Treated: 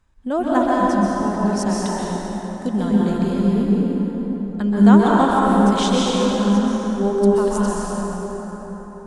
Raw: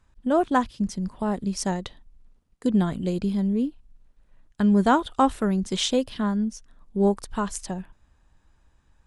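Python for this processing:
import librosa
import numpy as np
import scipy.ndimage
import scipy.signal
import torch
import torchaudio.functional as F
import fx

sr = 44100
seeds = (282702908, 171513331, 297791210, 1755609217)

y = fx.rev_plate(x, sr, seeds[0], rt60_s=4.8, hf_ratio=0.5, predelay_ms=115, drr_db=-6.0)
y = y * librosa.db_to_amplitude(-1.0)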